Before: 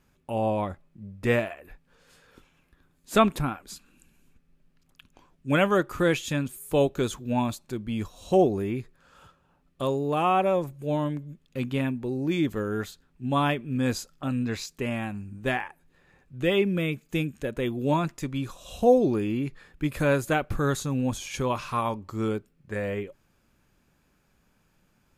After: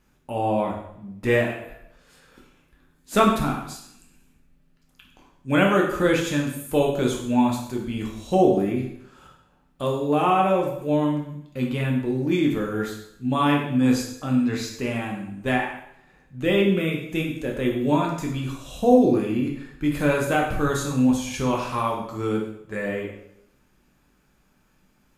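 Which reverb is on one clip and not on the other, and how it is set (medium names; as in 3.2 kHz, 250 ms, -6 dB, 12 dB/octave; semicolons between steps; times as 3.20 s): plate-style reverb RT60 0.74 s, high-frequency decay 0.95×, DRR -1 dB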